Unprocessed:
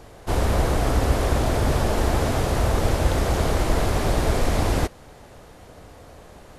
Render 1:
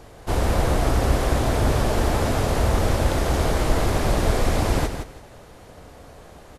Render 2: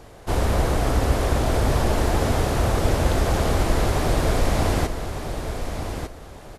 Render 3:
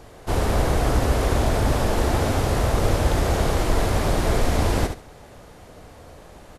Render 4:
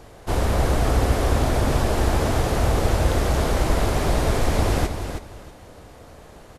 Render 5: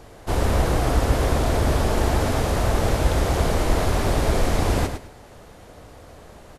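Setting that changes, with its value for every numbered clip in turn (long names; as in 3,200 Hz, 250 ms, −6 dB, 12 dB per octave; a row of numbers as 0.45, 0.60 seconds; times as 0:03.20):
repeating echo, delay time: 165, 1,201, 72, 319, 108 milliseconds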